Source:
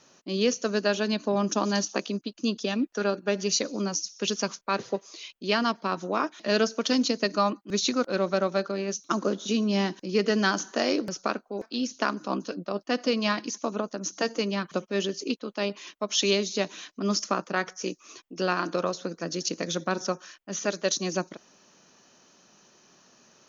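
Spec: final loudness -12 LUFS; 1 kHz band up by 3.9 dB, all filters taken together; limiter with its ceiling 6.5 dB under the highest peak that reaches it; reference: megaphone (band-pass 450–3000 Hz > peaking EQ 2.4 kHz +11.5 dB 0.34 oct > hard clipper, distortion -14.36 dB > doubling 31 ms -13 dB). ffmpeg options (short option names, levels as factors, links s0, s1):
-filter_complex "[0:a]equalizer=f=1000:t=o:g=5,alimiter=limit=0.188:level=0:latency=1,highpass=450,lowpass=3000,equalizer=f=2400:t=o:w=0.34:g=11.5,asoftclip=type=hard:threshold=0.0891,asplit=2[s0][s1];[s1]adelay=31,volume=0.224[s2];[s0][s2]amix=inputs=2:normalize=0,volume=8.91"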